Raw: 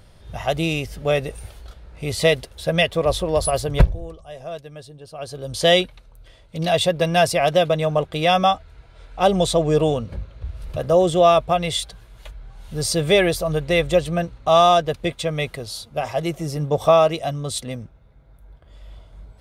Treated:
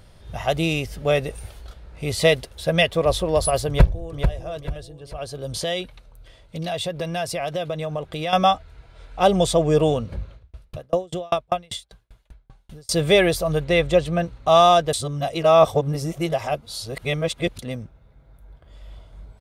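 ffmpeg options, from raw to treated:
-filter_complex "[0:a]asplit=2[s0][s1];[s1]afade=t=in:st=3.68:d=0.01,afade=t=out:st=4.33:d=0.01,aecho=0:1:440|880|1320|1760:0.473151|0.165603|0.057961|0.0202864[s2];[s0][s2]amix=inputs=2:normalize=0,asettb=1/sr,asplit=3[s3][s4][s5];[s3]atrim=end=5.594[s6];[s4]atrim=start=5.59:end=8.33,asetpts=PTS-STARTPTS,afade=t=in:d=0.004:c=qsin,afade=t=out:st=2.736:d=0.004:c=qsin,acompressor=threshold=0.0447:ratio=2.5:attack=3.2:release=140:knee=1:detection=peak[s7];[s5]atrim=start=8.326[s8];[s6][s7]acrossfade=d=0.004:c1=hsin:c2=qsin[s9];[s9][s8]acrossfade=d=0.004:c1=qsin:c2=hsin,asettb=1/sr,asplit=3[s10][s11][s12];[s10]atrim=end=9.384[s13];[s11]atrim=start=9.38:end=9.83,asetpts=PTS-STARTPTS,afade=t=in:d=0.004:c=qsin,afade=t=out:st=0.446:d=0.004:c=qsin,bandreject=f=4000:w=10[s14];[s12]atrim=start=9.826[s15];[s13][s14]acrossfade=d=0.004:c1=hsin:c2=qsin[s16];[s16][s15]acrossfade=d=0.004:c1=qsin:c2=hsin,asettb=1/sr,asplit=3[s17][s18][s19];[s17]atrim=end=10.344[s20];[s18]atrim=start=10.34:end=12.91,asetpts=PTS-STARTPTS,afade=t=in:d=0.004:c=qsin,afade=t=out:st=2.566:d=0.004:c=qsin,aeval=exprs='val(0)*pow(10,-38*if(lt(mod(5.1*n/s,1),2*abs(5.1)/1000),1-mod(5.1*n/s,1)/(2*abs(5.1)/1000),(mod(5.1*n/s,1)-2*abs(5.1)/1000)/(1-2*abs(5.1)/1000))/20)':c=same[s21];[s19]atrim=start=12.906[s22];[s20][s21]acrossfade=d=0.004:c1=hsin:c2=qsin[s23];[s23][s22]acrossfade=d=0.004:c1=qsin:c2=hsin,asettb=1/sr,asplit=3[s24][s25][s26];[s24]atrim=end=13.644[s27];[s25]atrim=start=13.64:end=14.26,asetpts=PTS-STARTPTS,afade=t=in:d=0.004:c=qsin,afade=t=out:st=0.616:d=0.004:c=qsin,highshelf=f=8900:g=-10[s28];[s26]atrim=start=14.256[s29];[s27][s28]acrossfade=d=0.004:c1=hsin:c2=qsin[s30];[s30][s29]acrossfade=d=0.004:c1=qsin:c2=hsin,asplit=3[s31][s32][s33];[s31]atrim=end=14.932[s34];[s32]atrim=start=14.928:end=17.592,asetpts=PTS-STARTPTS,areverse[s35];[s33]atrim=start=17.588[s36];[s34][s35]acrossfade=d=0.004:c1=hsin:c2=hsin[s37];[s37][s36]acrossfade=d=0.004:c1=hsin:c2=hsin"

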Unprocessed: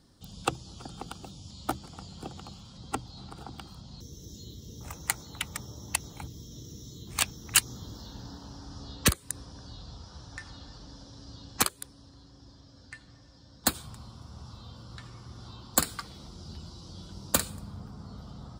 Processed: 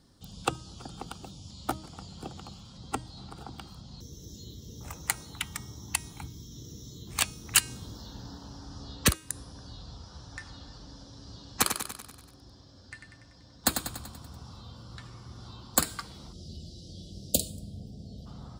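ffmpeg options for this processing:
-filter_complex "[0:a]asettb=1/sr,asplit=3[s0][s1][s2];[s0]atrim=end=5.334[s3];[s1]atrim=start=5.33:end=6.6,asetpts=PTS-STARTPTS,afade=t=in:d=0.004:c=qsin,afade=t=out:st=1.266:d=0.004:c=qsin,equalizer=f=550:t=o:w=0.44:g=-11[s4];[s2]atrim=start=6.596[s5];[s3][s4]acrossfade=d=0.004:c1=hsin:c2=qsin[s6];[s6][s5]acrossfade=d=0.004:c1=qsin:c2=hsin,asettb=1/sr,asplit=3[s7][s8][s9];[s7]atrim=end=11.144[s10];[s8]atrim=start=11.14:end=14.6,asetpts=PTS-STARTPTS,afade=t=in:d=0.004:c=qsin,afade=t=out:st=3.456:d=0.004:c=qsin,aecho=1:1:96|192|288|384|480|576|672:0.447|0.25|0.14|0.0784|0.0439|0.0246|0.0138,atrim=end_sample=152586[s11];[s9]atrim=start=14.596[s12];[s10][s11]acrossfade=d=0.004:c1=hsin:c2=qsin[s13];[s13][s12]acrossfade=d=0.004:c1=qsin:c2=hsin,asplit=3[s14][s15][s16];[s14]afade=t=out:st=16.32:d=0.02[s17];[s15]asuperstop=centerf=1400:order=12:qfactor=0.64,afade=t=in:st=16.32:d=0.02,afade=t=out:st=18.25:d=0.02[s18];[s16]afade=t=in:st=18.25:d=0.02[s19];[s17][s18][s19]amix=inputs=3:normalize=0,bandreject=f=314.9:t=h:w=4,bandreject=f=629.8:t=h:w=4,bandreject=f=944.7:t=h:w=4,bandreject=f=1259.6:t=h:w=4,bandreject=f=1574.5:t=h:w=4,bandreject=f=1889.4:t=h:w=4,bandreject=f=2204.3:t=h:w=4,bandreject=f=2519.2:t=h:w=4,bandreject=f=2834.1:t=h:w=4,bandreject=f=3149:t=h:w=4,bandreject=f=3463.9:t=h:w=4,bandreject=f=3778.8:t=h:w=4,bandreject=f=4093.7:t=h:w=4,bandreject=f=4408.6:t=h:w=4,bandreject=f=4723.5:t=h:w=4,bandreject=f=5038.4:t=h:w=4,bandreject=f=5353.3:t=h:w=4,bandreject=f=5668.2:t=h:w=4,bandreject=f=5983.1:t=h:w=4,bandreject=f=6298:t=h:w=4,bandreject=f=6612.9:t=h:w=4,bandreject=f=6927.8:t=h:w=4,bandreject=f=7242.7:t=h:w=4,bandreject=f=7557.6:t=h:w=4,bandreject=f=7872.5:t=h:w=4,bandreject=f=8187.4:t=h:w=4,bandreject=f=8502.3:t=h:w=4,bandreject=f=8817.2:t=h:w=4,bandreject=f=9132.1:t=h:w=4,bandreject=f=9447:t=h:w=4,bandreject=f=9761.9:t=h:w=4,bandreject=f=10076.8:t=h:w=4,bandreject=f=10391.7:t=h:w=4,bandreject=f=10706.6:t=h:w=4,bandreject=f=11021.5:t=h:w=4"

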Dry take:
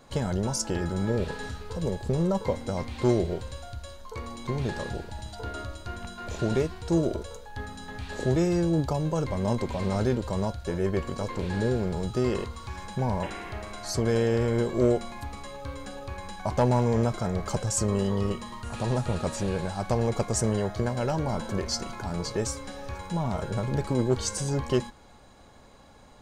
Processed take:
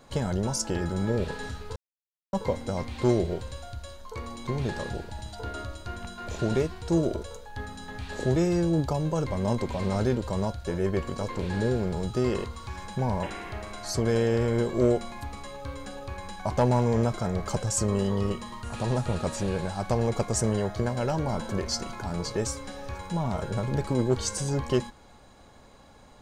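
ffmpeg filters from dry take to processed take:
-filter_complex "[0:a]asplit=3[s0][s1][s2];[s0]atrim=end=1.76,asetpts=PTS-STARTPTS,afade=t=out:st=1.756:d=0.004:c=hsin[s3];[s1]atrim=start=1.76:end=2.33,asetpts=PTS-STARTPTS,volume=0[s4];[s2]atrim=start=2.33,asetpts=PTS-STARTPTS,afade=t=in:d=0.004:c=hsin[s5];[s3][s4][s5]concat=n=3:v=0:a=1"

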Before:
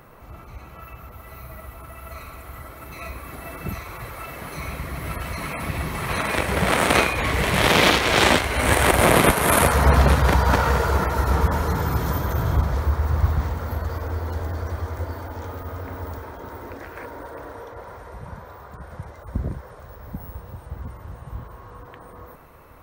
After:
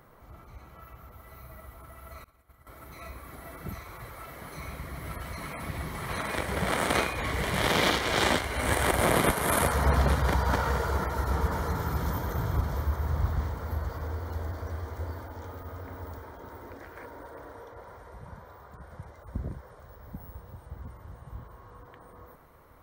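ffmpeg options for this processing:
-filter_complex "[0:a]asettb=1/sr,asplit=3[s0][s1][s2];[s0]atrim=end=2.244[s3];[s1]atrim=start=2.24:end=2.67,asetpts=PTS-STARTPTS,afade=t=in:d=0.004:c=qsin,afade=t=out:st=0.426:d=0.004:c=qsin,agate=range=0.0224:threshold=0.0355:ratio=3:release=100:detection=peak[s4];[s2]atrim=start=2.666[s5];[s3][s4]acrossfade=d=0.004:c1=hsin:c2=qsin[s6];[s6][s5]acrossfade=d=0.004:c1=qsin:c2=hsin,asettb=1/sr,asplit=3[s7][s8][s9];[s7]atrim=end=10.824[s10];[s8]atrim=start=10.82:end=15.25,asetpts=PTS-STARTPTS,afade=t=in:d=0.004:c=qsin,afade=t=out:st=4.426:d=0.004:c=qsin,aecho=1:1:632:0.398,atrim=end_sample=195363[s11];[s9]atrim=start=15.246[s12];[s10][s11]acrossfade=d=0.004:c1=hsin:c2=qsin[s13];[s13][s12]acrossfade=d=0.004:c1=qsin:c2=hsin,bandreject=f=2600:w=7.6,volume=0.398"

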